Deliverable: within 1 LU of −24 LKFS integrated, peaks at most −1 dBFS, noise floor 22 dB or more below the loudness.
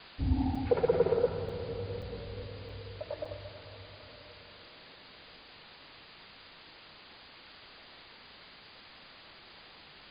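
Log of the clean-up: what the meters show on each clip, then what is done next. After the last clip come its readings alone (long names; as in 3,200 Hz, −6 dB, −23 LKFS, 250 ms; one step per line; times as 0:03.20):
number of dropouts 5; longest dropout 4.5 ms; background noise floor −54 dBFS; target noise floor −56 dBFS; integrated loudness −33.5 LKFS; sample peak −14.0 dBFS; target loudness −24.0 LKFS
→ repair the gap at 0:00.55/0:01.49/0:02.02/0:02.69/0:03.25, 4.5 ms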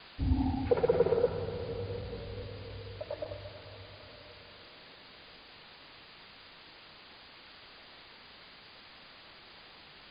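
number of dropouts 0; background noise floor −54 dBFS; target noise floor −56 dBFS
→ broadband denoise 6 dB, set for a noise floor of −54 dBFS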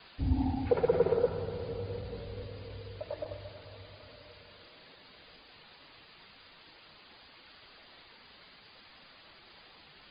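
background noise floor −57 dBFS; integrated loudness −33.5 LKFS; sample peak −14.0 dBFS; target loudness −24.0 LKFS
→ level +9.5 dB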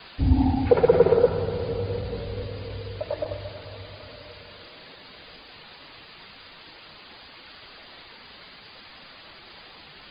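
integrated loudness −24.0 LKFS; sample peak −4.5 dBFS; background noise floor −47 dBFS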